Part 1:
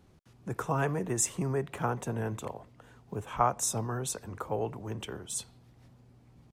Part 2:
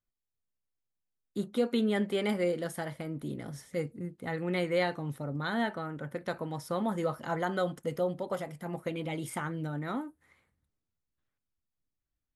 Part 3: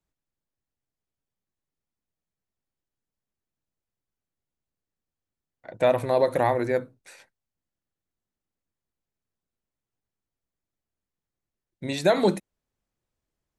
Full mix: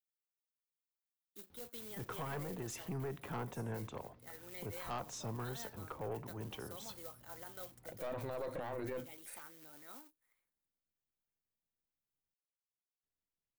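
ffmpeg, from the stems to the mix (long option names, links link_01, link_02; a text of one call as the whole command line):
ffmpeg -i stem1.wav -i stem2.wav -i stem3.wav -filter_complex "[0:a]asoftclip=type=tanh:threshold=-26dB,lowpass=frequency=5700:width=0.5412,lowpass=frequency=5700:width=1.3066,adelay=1500,volume=-4dB[link_01];[1:a]acrusher=bits=3:mode=log:mix=0:aa=0.000001,highpass=240,aemphasis=mode=production:type=bsi,volume=-17dB[link_02];[2:a]lowpass=6000,adelay=2200,volume=-7.5dB,asplit=3[link_03][link_04][link_05];[link_03]atrim=end=12.34,asetpts=PTS-STARTPTS,afade=type=out:start_time=12.336:duration=0.004:curve=hsin[link_06];[link_04]atrim=start=12.34:end=13.03,asetpts=PTS-STARTPTS,volume=0[link_07];[link_05]atrim=start=13.03,asetpts=PTS-STARTPTS,afade=type=in:duration=0.004:curve=hsin[link_08];[link_06][link_07][link_08]concat=n=3:v=0:a=1[link_09];[link_01][link_02][link_09]amix=inputs=3:normalize=0,aeval=exprs='(tanh(17.8*val(0)+0.55)-tanh(0.55))/17.8':channel_layout=same,alimiter=level_in=9dB:limit=-24dB:level=0:latency=1:release=15,volume=-9dB" out.wav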